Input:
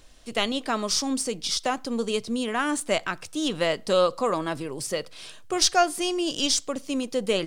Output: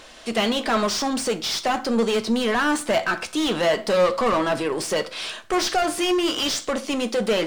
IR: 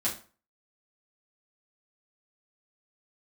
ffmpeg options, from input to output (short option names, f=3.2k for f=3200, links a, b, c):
-filter_complex "[0:a]asoftclip=type=tanh:threshold=-12dB,asplit=2[a][b];[b]highpass=f=720:p=1,volume=25dB,asoftclip=type=tanh:threshold=-12.5dB[c];[a][c]amix=inputs=2:normalize=0,lowpass=f=2.5k:p=1,volume=-6dB,asplit=2[d][e];[1:a]atrim=start_sample=2205[f];[e][f]afir=irnorm=-1:irlink=0,volume=-13.5dB[g];[d][g]amix=inputs=2:normalize=0,volume=-2.5dB"